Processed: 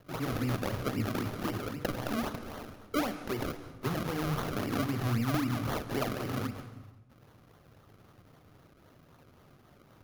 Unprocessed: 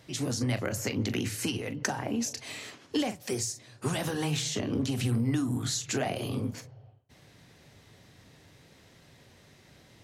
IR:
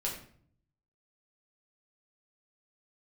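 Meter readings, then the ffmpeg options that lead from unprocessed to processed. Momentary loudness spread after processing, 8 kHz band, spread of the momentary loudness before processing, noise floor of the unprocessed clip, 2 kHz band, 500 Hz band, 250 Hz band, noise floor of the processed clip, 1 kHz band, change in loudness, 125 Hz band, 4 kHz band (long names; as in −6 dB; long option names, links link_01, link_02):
8 LU, −13.0 dB, 6 LU, −58 dBFS, −1.5 dB, −1.0 dB, −2.0 dB, −60 dBFS, +2.5 dB, −2.5 dB, −2.0 dB, −7.0 dB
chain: -filter_complex "[0:a]acrusher=samples=34:mix=1:aa=0.000001:lfo=1:lforange=34:lforate=3.8,equalizer=frequency=1250:width_type=o:width=0.33:gain=6,equalizer=frequency=8000:width_type=o:width=0.33:gain=-8,equalizer=frequency=12500:width_type=o:width=0.33:gain=4,asplit=2[link_01][link_02];[1:a]atrim=start_sample=2205,asetrate=22491,aresample=44100,adelay=139[link_03];[link_02][link_03]afir=irnorm=-1:irlink=0,volume=-20.5dB[link_04];[link_01][link_04]amix=inputs=2:normalize=0,volume=-2.5dB"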